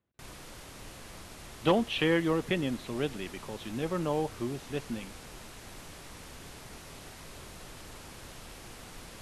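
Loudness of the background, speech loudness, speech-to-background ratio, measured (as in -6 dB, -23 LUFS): -47.0 LUFS, -31.5 LUFS, 15.5 dB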